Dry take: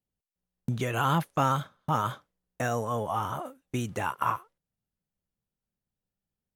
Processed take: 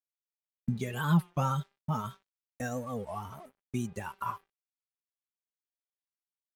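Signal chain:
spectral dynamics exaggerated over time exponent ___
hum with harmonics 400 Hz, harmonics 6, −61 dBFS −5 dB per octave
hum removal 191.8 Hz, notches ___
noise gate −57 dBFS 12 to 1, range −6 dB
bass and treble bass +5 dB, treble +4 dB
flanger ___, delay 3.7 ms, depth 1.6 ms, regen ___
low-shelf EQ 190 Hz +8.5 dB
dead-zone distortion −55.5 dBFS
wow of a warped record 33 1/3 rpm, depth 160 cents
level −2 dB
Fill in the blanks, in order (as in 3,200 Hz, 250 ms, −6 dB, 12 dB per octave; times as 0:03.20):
1.5, 21, 0.37 Hz, +14%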